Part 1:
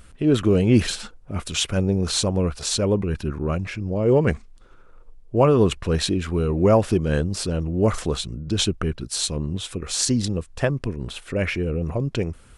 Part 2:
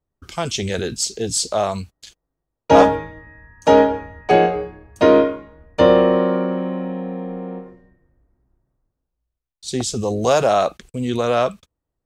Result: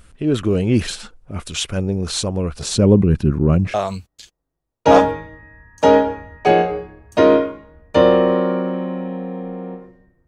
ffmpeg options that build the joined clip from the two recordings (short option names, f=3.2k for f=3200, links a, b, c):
-filter_complex "[0:a]asettb=1/sr,asplit=3[a][b][c];[a]atrim=end=2.564[d];[b]atrim=start=2.56:end=3.74,asetpts=PTS-STARTPTS,afade=t=in:d=0.004:c=qsin,afade=t=out:st=1.176:d=0.004:c=qsin,equalizer=f=170:w=0.43:g=12[e];[c]atrim=start=3.736[f];[d][e]acrossfade=d=0.004:c1=hsin:c2=qsin[g];[g][f]acrossfade=d=0.004:c1=qsin:c2=hsin,apad=whole_dur=10.27,atrim=end=10.27,atrim=end=3.742[h];[1:a]atrim=start=1.578:end=8.11[i];[h][i]acrossfade=d=0.004:c1=hsin:c2=hsin"